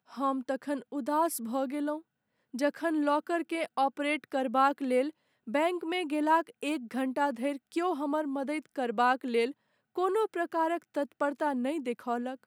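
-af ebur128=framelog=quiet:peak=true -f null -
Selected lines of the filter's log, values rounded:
Integrated loudness:
  I:         -30.9 LUFS
  Threshold: -41.1 LUFS
Loudness range:
  LRA:         2.1 LU
  Threshold: -50.8 LUFS
  LRA low:   -31.9 LUFS
  LRA high:  -29.8 LUFS
True peak:
  Peak:      -13.3 dBFS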